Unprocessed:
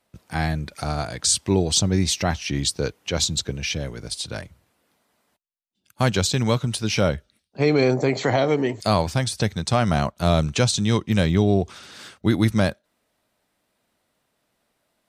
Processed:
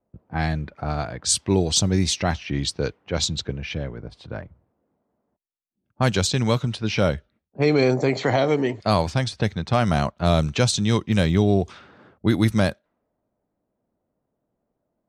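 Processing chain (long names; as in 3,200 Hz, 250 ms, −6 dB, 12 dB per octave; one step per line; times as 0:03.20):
low-pass that shuts in the quiet parts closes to 590 Hz, open at −15.5 dBFS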